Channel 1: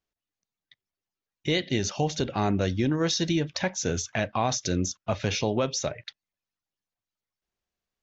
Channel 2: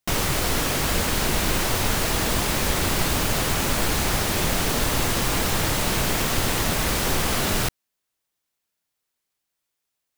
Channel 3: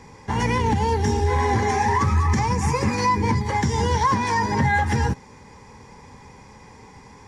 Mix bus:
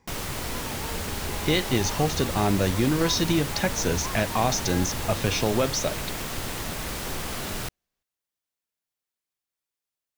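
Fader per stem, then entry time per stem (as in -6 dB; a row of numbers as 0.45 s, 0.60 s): +2.0 dB, -9.0 dB, -18.0 dB; 0.00 s, 0.00 s, 0.00 s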